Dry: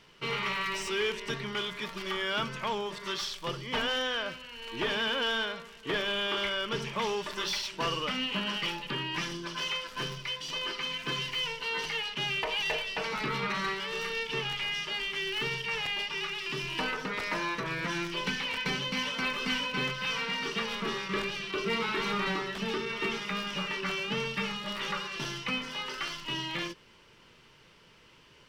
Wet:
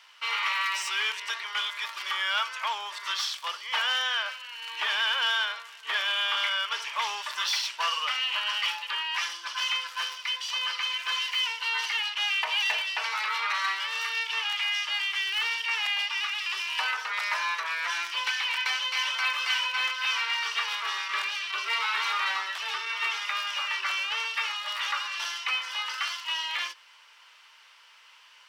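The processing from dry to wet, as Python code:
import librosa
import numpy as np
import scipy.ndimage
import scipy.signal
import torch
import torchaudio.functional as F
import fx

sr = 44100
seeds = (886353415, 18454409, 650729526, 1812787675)

y = scipy.signal.sosfilt(scipy.signal.butter(4, 860.0, 'highpass', fs=sr, output='sos'), x)
y = F.gain(torch.from_numpy(y), 5.0).numpy()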